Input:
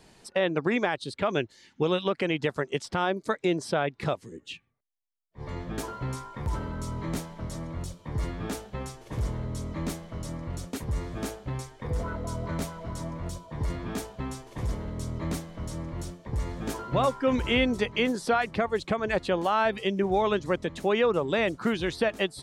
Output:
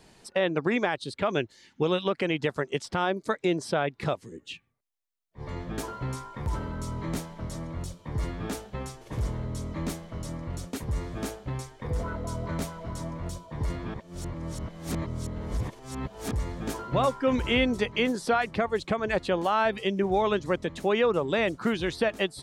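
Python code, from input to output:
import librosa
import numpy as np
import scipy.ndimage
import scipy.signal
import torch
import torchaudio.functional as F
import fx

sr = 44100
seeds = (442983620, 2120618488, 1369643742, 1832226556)

y = fx.edit(x, sr, fx.reverse_span(start_s=13.94, length_s=2.38), tone=tone)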